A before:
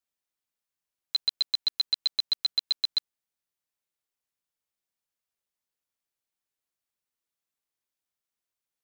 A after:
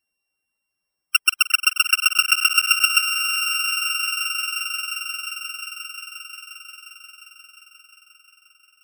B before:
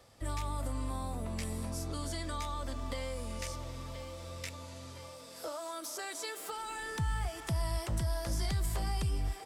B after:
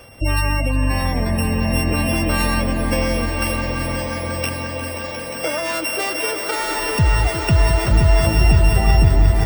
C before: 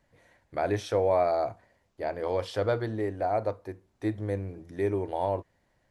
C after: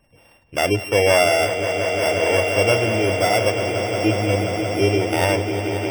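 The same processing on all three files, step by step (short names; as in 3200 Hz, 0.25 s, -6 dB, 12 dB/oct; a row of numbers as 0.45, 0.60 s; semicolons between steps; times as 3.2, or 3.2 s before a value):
sample sorter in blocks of 16 samples; spectral gate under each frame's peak -25 dB strong; swelling echo 0.177 s, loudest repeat 5, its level -10.5 dB; match loudness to -19 LUFS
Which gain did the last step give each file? +10.0, +18.0, +8.5 dB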